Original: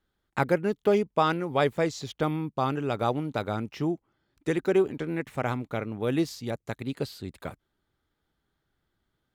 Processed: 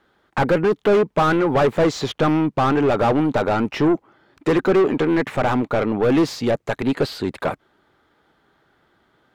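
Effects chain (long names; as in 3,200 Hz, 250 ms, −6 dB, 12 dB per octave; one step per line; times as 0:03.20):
mid-hump overdrive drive 30 dB, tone 1,000 Hz, clips at −9.5 dBFS
level +2 dB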